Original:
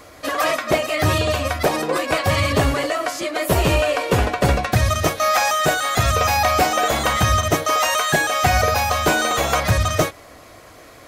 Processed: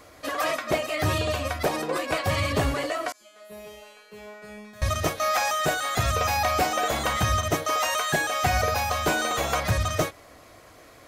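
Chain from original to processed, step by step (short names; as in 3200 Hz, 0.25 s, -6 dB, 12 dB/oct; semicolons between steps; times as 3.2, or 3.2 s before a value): 3.12–4.82 resonator 210 Hz, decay 1 s, mix 100%; gain -6.5 dB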